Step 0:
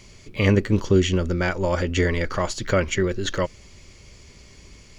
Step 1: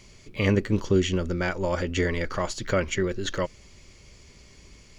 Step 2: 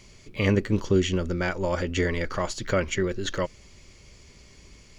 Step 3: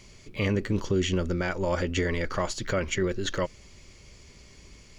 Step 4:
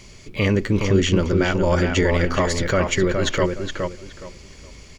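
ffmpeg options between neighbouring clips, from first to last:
-af "equalizer=f=90:t=o:w=0.44:g=-2.5,volume=-3.5dB"
-af anull
-af "alimiter=limit=-16.5dB:level=0:latency=1:release=33"
-filter_complex "[0:a]asplit=2[a][b];[b]adelay=417,lowpass=f=2.8k:p=1,volume=-4dB,asplit=2[c][d];[d]adelay=417,lowpass=f=2.8k:p=1,volume=0.25,asplit=2[e][f];[f]adelay=417,lowpass=f=2.8k:p=1,volume=0.25[g];[a][c][e][g]amix=inputs=4:normalize=0,volume=7dB"

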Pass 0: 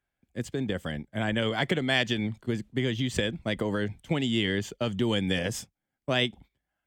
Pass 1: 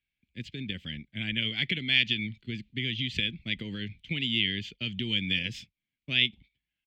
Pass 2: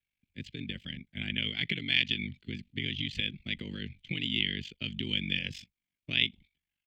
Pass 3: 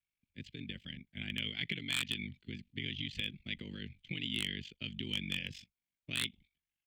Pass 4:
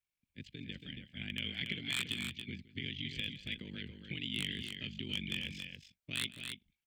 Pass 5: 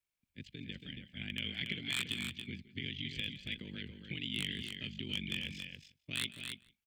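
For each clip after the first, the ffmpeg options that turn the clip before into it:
-af "firequalizer=gain_entry='entry(210,0);entry(610,-19);entry(1100,-19);entry(2300,12);entry(4100,7);entry(5900,-6);entry(9200,-18);entry(13000,-14)':delay=0.05:min_phase=1,volume=-5dB"
-af "aeval=exprs='val(0)*sin(2*PI*24*n/s)':c=same"
-af "aeval=exprs='0.126*(abs(mod(val(0)/0.126+3,4)-2)-1)':c=same,volume=-5.5dB"
-af "aecho=1:1:164|279:0.126|0.473,volume=-1.5dB"
-filter_complex "[0:a]asplit=2[a][b];[b]adelay=169.1,volume=-23dB,highshelf=f=4k:g=-3.8[c];[a][c]amix=inputs=2:normalize=0"

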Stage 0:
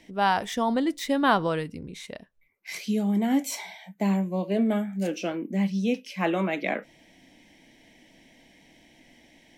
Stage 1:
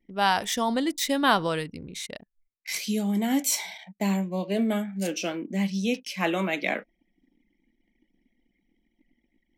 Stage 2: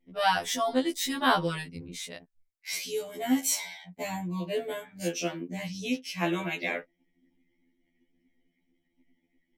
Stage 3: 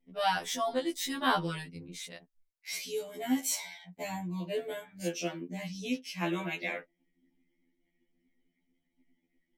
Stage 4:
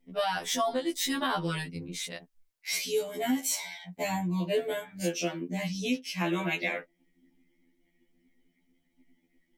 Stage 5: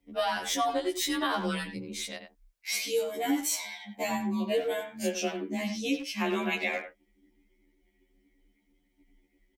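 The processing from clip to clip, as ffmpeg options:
-af "anlmdn=0.0158,highshelf=f=2.8k:g=11.5,volume=-1.5dB"
-af "afftfilt=real='re*2*eq(mod(b,4),0)':imag='im*2*eq(mod(b,4),0)':win_size=2048:overlap=0.75"
-af "flanger=delay=4.4:depth=2.4:regen=-50:speed=0.34:shape=triangular"
-af "alimiter=level_in=1.5dB:limit=-24dB:level=0:latency=1:release=336,volume=-1.5dB,volume=6.5dB"
-filter_complex "[0:a]afreqshift=28,asplit=2[a][b];[b]adelay=90,highpass=300,lowpass=3.4k,asoftclip=type=hard:threshold=-25.5dB,volume=-8dB[c];[a][c]amix=inputs=2:normalize=0"

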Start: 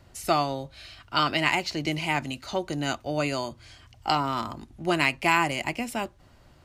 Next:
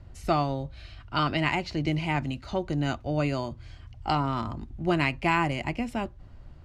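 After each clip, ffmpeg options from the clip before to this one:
-af "aemphasis=mode=reproduction:type=bsi,volume=-2.5dB"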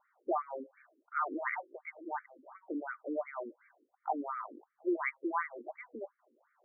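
-af "afftfilt=real='re*between(b*sr/1024,350*pow(1700/350,0.5+0.5*sin(2*PI*2.8*pts/sr))/1.41,350*pow(1700/350,0.5+0.5*sin(2*PI*2.8*pts/sr))*1.41)':imag='im*between(b*sr/1024,350*pow(1700/350,0.5+0.5*sin(2*PI*2.8*pts/sr))/1.41,350*pow(1700/350,0.5+0.5*sin(2*PI*2.8*pts/sr))*1.41)':win_size=1024:overlap=0.75,volume=-3.5dB"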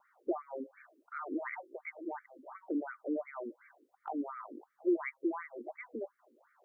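-filter_complex "[0:a]acrossover=split=440|3000[a][b][c];[b]acompressor=threshold=-48dB:ratio=6[d];[a][d][c]amix=inputs=3:normalize=0,volume=4.5dB"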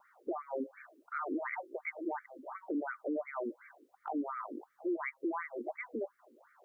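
-af "alimiter=level_in=8.5dB:limit=-24dB:level=0:latency=1:release=121,volume=-8.5dB,volume=4.5dB"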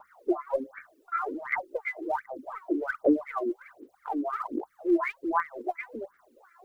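-af "aphaser=in_gain=1:out_gain=1:delay=3:decay=0.76:speed=1.3:type=sinusoidal,volume=3.5dB"

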